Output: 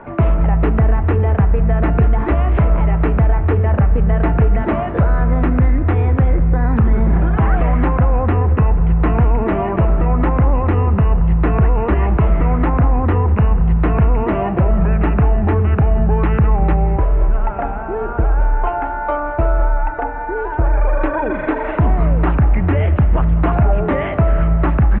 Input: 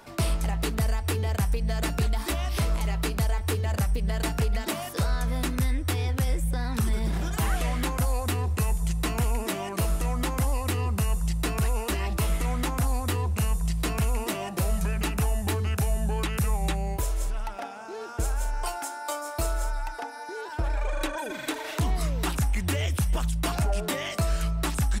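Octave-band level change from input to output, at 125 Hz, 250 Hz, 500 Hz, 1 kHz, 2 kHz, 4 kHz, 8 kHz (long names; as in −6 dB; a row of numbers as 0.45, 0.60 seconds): +13.0 dB, +13.5 dB, +13.5 dB, +12.5 dB, +7.5 dB, can't be measured, below −40 dB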